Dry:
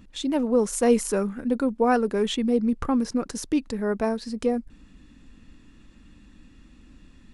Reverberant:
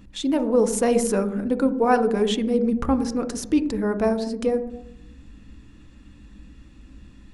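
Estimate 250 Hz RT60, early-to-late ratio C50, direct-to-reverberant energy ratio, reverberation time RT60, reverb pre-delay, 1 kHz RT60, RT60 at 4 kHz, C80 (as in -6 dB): 0.80 s, 12.0 dB, 8.5 dB, 0.75 s, 3 ms, 0.70 s, 0.60 s, 14.5 dB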